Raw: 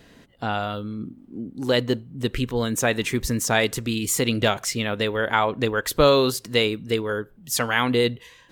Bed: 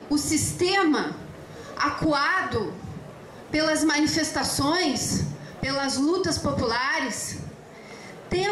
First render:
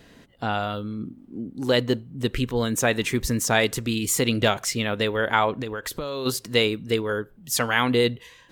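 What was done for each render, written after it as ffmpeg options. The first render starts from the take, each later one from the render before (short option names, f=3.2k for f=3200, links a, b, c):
-filter_complex "[0:a]asplit=3[a][b][c];[a]afade=t=out:st=5.6:d=0.02[d];[b]acompressor=threshold=-26dB:ratio=16:attack=3.2:release=140:knee=1:detection=peak,afade=t=in:st=5.6:d=0.02,afade=t=out:st=6.25:d=0.02[e];[c]afade=t=in:st=6.25:d=0.02[f];[d][e][f]amix=inputs=3:normalize=0"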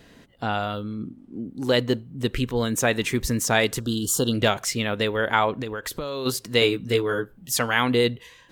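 -filter_complex "[0:a]asettb=1/sr,asplit=3[a][b][c];[a]atrim=end=0.834[d];[b]atrim=start=0.83:end=1.42,asetpts=PTS-STARTPTS,afade=t=in:d=0.004:c=qsin,afade=t=out:st=0.586:d=0.004:c=qsin,lowpass=12k[e];[c]atrim=start=1.416[f];[d][e]acrossfade=d=0.004:c1=hsin:c2=qsin[g];[g][f]acrossfade=d=0.004:c1=qsin:c2=hsin,asettb=1/sr,asplit=3[h][i][j];[h]atrim=end=3.804[k];[i]atrim=start=3.8:end=4.34,asetpts=PTS-STARTPTS,afade=t=in:d=0.004:c=qsin,afade=t=out:st=0.536:d=0.004:c=qsin,asuperstop=centerf=2200:order=12:qfactor=1.8[l];[j]atrim=start=4.336[m];[k][l]acrossfade=d=0.004:c1=hsin:c2=qsin[n];[n][m]acrossfade=d=0.004:c1=qsin:c2=hsin,asettb=1/sr,asplit=3[o][p][q];[o]atrim=end=6.604[r];[p]atrim=start=6.6:end=7.53,asetpts=PTS-STARTPTS,afade=t=in:d=0.004:c=qsin,afade=t=out:st=0.926:d=0.004:c=qsin,asplit=2[s][t];[t]adelay=16,volume=-2.5dB[u];[s][u]amix=inputs=2:normalize=0,atrim=end_sample=41013[v];[q]atrim=start=7.526[w];[r][v]acrossfade=d=0.004:c1=hsin:c2=qsin[x];[x][w]acrossfade=d=0.004:c1=qsin:c2=hsin"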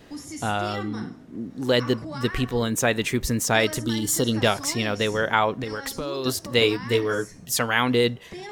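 -filter_complex "[1:a]volume=-13.5dB[a];[0:a][a]amix=inputs=2:normalize=0"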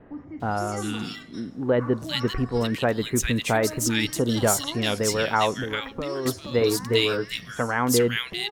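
-filter_complex "[0:a]acrossover=split=1800[a][b];[b]adelay=400[c];[a][c]amix=inputs=2:normalize=0"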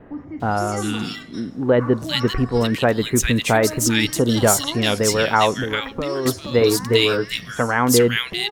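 -af "volume=5.5dB,alimiter=limit=-2dB:level=0:latency=1"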